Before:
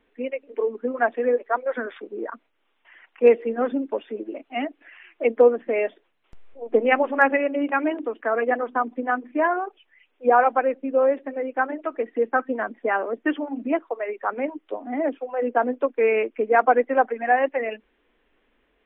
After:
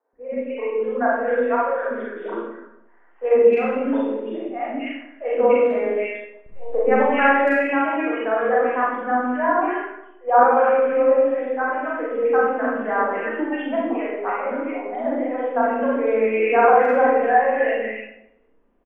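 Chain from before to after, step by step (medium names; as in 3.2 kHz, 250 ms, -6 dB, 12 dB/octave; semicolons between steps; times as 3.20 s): three bands offset in time mids, lows, highs 130/260 ms, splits 480/1800 Hz; Schroeder reverb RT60 0.88 s, combs from 32 ms, DRR -5.5 dB; level-controlled noise filter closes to 920 Hz, open at -14.5 dBFS; trim -1.5 dB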